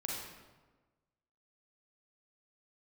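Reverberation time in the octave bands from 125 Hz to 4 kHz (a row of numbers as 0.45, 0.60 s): 1.4, 1.4, 1.4, 1.2, 1.0, 0.85 s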